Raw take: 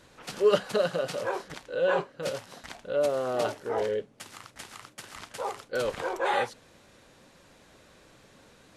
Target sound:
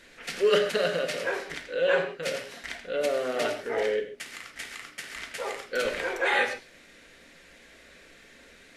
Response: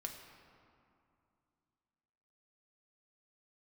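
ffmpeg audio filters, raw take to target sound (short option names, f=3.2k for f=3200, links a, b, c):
-filter_complex "[0:a]equalizer=f=125:t=o:w=1:g=-12,equalizer=f=1k:t=o:w=1:g=-9,equalizer=f=2k:t=o:w=1:g=10[a];[1:a]atrim=start_sample=2205,atrim=end_sample=6615[b];[a][b]afir=irnorm=-1:irlink=0,volume=5.5dB"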